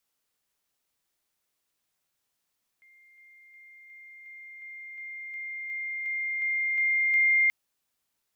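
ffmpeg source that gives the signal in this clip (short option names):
-f lavfi -i "aevalsrc='pow(10,(-55+3*floor(t/0.36))/20)*sin(2*PI*2110*t)':d=4.68:s=44100"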